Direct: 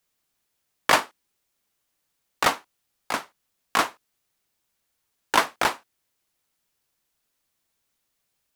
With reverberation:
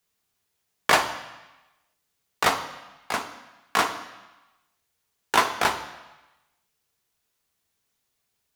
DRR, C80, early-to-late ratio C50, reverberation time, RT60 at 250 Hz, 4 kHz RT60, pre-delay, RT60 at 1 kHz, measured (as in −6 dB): 4.5 dB, 12.5 dB, 10.0 dB, 1.1 s, 1.0 s, 1.1 s, 3 ms, 1.1 s